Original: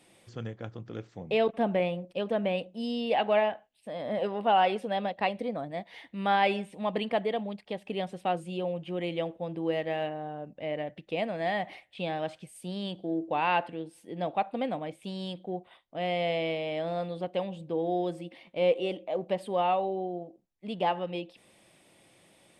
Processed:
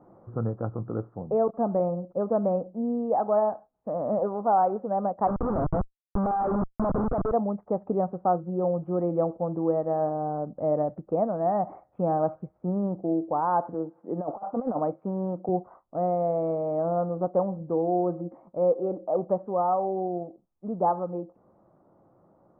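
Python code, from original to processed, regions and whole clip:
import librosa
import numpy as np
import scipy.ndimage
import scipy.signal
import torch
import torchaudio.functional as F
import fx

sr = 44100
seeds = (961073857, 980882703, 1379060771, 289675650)

y = fx.chain(x, sr, fx.lowpass(hz=1700.0, slope=6),
    fx.tilt_eq(slope=1.5),
    fx.schmitt(flips_db=-37.5), at=(5.27, 7.32))
y = fx.chain(y, sr, fx.bandpass_edges(low_hz=120.0, high_hz=5100.0),
    fx.low_shelf(hz=270.0, db=-6.5),
    fx.over_compress(threshold_db=-36.0, ratio=-0.5), at=(13.74, 15.49))
y = scipy.signal.sosfilt(scipy.signal.cheby1(5, 1.0, 1300.0, 'lowpass', fs=sr, output='sos'), y)
y = fx.rider(y, sr, range_db=4, speed_s=0.5)
y = y * 10.0 ** (5.5 / 20.0)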